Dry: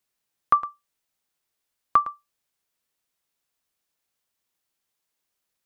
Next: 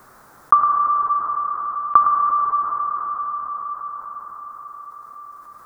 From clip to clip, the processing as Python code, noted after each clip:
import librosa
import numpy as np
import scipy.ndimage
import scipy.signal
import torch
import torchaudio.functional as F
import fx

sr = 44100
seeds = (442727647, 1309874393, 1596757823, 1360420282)

y = fx.high_shelf_res(x, sr, hz=1900.0, db=-13.5, q=3.0)
y = fx.rev_plate(y, sr, seeds[0], rt60_s=4.4, hf_ratio=0.75, predelay_ms=0, drr_db=8.0)
y = fx.env_flatten(y, sr, amount_pct=50)
y = y * 10.0 ** (-1.5 / 20.0)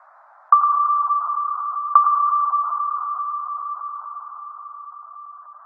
y = scipy.signal.sosfilt(scipy.signal.butter(12, 610.0, 'highpass', fs=sr, output='sos'), x)
y = fx.spec_gate(y, sr, threshold_db=-30, keep='strong')
y = scipy.signal.sosfilt(scipy.signal.butter(2, 1100.0, 'lowpass', fs=sr, output='sos'), y)
y = y * 10.0 ** (3.5 / 20.0)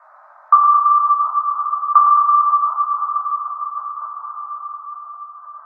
y = fx.echo_feedback(x, sr, ms=218, feedback_pct=36, wet_db=-10.0)
y = fx.room_shoebox(y, sr, seeds[1], volume_m3=370.0, walls='furnished', distance_m=2.7)
y = y * 10.0 ** (-1.5 / 20.0)